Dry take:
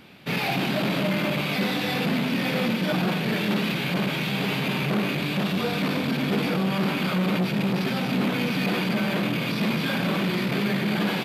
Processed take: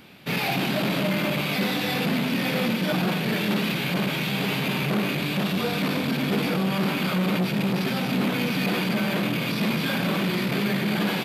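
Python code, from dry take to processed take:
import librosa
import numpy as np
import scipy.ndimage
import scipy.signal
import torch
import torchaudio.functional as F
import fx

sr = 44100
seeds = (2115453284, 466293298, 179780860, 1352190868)

y = fx.high_shelf(x, sr, hz=8000.0, db=6.0)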